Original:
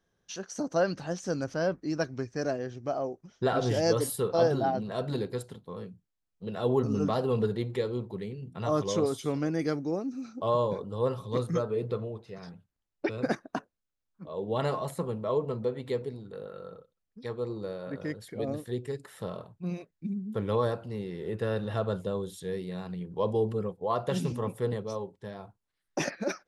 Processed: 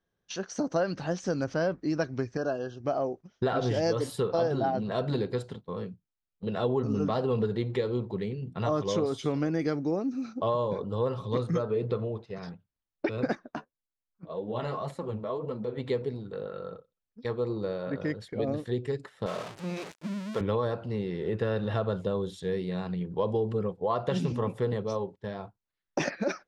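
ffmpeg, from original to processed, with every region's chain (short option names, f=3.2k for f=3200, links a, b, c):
-filter_complex "[0:a]asettb=1/sr,asplit=3[a][b][c];[a]atrim=end=2.374[d];[b]atrim=start=2.37:end=2.8,asetpts=PTS-STARTPTS,afade=t=in:d=0.004:c=qsin,afade=t=out:st=0.426:d=0.004:c=qsin,asuperstop=centerf=2100:order=20:qfactor=2.4,acrossover=split=2800[e][f];[f]acompressor=threshold=-54dB:ratio=4:attack=1:release=60[g];[e][g]amix=inputs=2:normalize=0,lowshelf=f=440:g=-7[h];[c]atrim=start=2.796[i];[d][h]acrossfade=d=0.004:c1=hsin:c2=qsin[j];[j][i]acrossfade=d=0.004:c1=qsin:c2=hsin,asettb=1/sr,asplit=3[k][l][m];[k]atrim=end=13.334[n];[l]atrim=start=13.33:end=15.78,asetpts=PTS-STARTPTS,afade=t=in:d=0.004:c=qsin,afade=t=out:st=2.446:d=0.004:c=qsin,acompressor=threshold=-32dB:ratio=2:attack=3.2:release=140:knee=1:detection=peak,flanger=delay=3.4:depth=10:regen=22:speed=1.8:shape=sinusoidal[o];[m]atrim=start=15.776[p];[n][o]acrossfade=d=0.004:c1=hsin:c2=qsin[q];[q][p]acrossfade=d=0.004:c1=qsin:c2=hsin,asettb=1/sr,asplit=3[r][s][t];[r]atrim=end=19.264[u];[s]atrim=start=19.26:end=20.41,asetpts=PTS-STARTPTS,afade=t=in:d=0.004:c=qsin,afade=t=out:st=1.146:d=0.004:c=qsin,aeval=exprs='val(0)+0.5*0.0133*sgn(val(0))':c=same,highpass=f=430:p=1,highshelf=f=8.4k:g=11.5[v];[t]atrim=start=20.406[w];[u][v]acrossfade=d=0.004:c1=hsin:c2=qsin[x];[x][w]acrossfade=d=0.004:c1=qsin:c2=hsin,agate=range=-10dB:threshold=-46dB:ratio=16:detection=peak,lowpass=5.2k,acompressor=threshold=-29dB:ratio=4,volume=4.5dB"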